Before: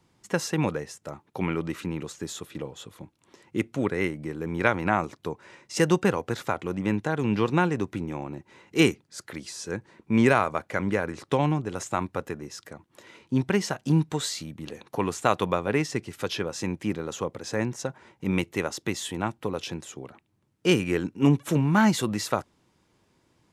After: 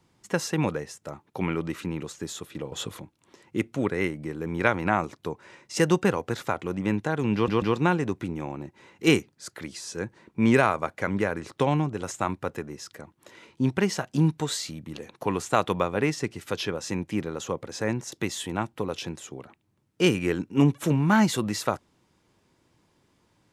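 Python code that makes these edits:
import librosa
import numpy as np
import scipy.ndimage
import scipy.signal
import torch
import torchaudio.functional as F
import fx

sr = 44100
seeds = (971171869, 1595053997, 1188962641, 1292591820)

y = fx.edit(x, sr, fx.clip_gain(start_s=2.72, length_s=0.28, db=9.5),
    fx.stutter(start_s=7.34, slice_s=0.14, count=3),
    fx.cut(start_s=17.84, length_s=0.93), tone=tone)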